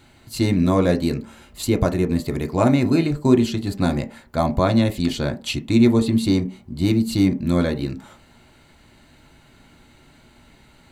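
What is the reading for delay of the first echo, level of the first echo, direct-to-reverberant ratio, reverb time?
none, none, 4.0 dB, 0.45 s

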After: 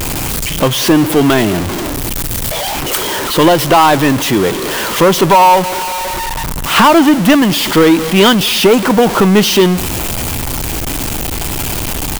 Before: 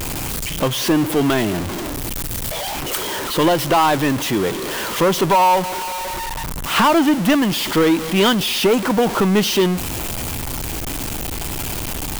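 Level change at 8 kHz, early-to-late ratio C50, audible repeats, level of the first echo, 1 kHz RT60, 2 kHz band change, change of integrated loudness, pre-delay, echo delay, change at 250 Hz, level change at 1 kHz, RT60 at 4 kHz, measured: +7.0 dB, none, 1, -22.0 dB, none, +7.0 dB, +7.0 dB, none, 0.208 s, +7.0 dB, +7.0 dB, none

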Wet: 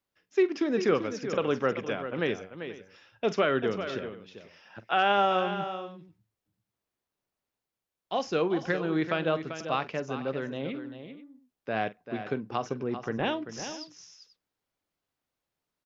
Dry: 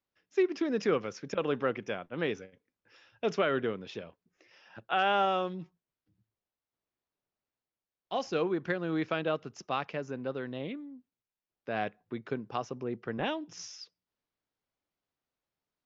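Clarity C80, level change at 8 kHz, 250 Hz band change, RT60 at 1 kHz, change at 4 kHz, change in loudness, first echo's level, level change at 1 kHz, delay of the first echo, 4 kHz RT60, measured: none, n/a, +3.5 dB, none, +3.5 dB, +3.0 dB, -16.0 dB, +3.5 dB, 45 ms, none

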